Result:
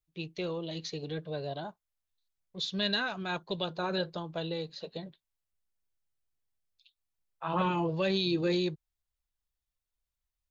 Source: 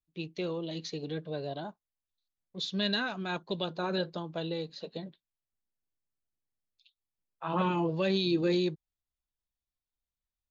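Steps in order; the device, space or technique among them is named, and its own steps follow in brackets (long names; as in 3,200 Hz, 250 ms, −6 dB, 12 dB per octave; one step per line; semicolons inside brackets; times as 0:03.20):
low shelf boost with a cut just above (low-shelf EQ 110 Hz +5.5 dB; parametric band 250 Hz −6 dB 1.1 octaves)
level +1 dB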